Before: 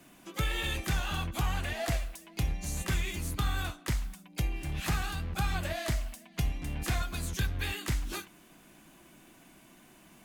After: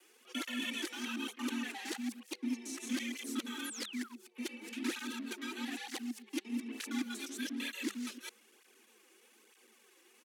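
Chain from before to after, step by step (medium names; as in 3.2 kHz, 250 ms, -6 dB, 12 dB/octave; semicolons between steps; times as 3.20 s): time reversed locally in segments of 115 ms; treble shelf 7.1 kHz -6.5 dB; pitch shift -2 st; painted sound fall, 3.64–4.14 s, 710–12000 Hz -46 dBFS; amplifier tone stack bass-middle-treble 5-5-5; frequency shift +200 Hz; cancelling through-zero flanger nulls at 1.1 Hz, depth 4.8 ms; trim +9 dB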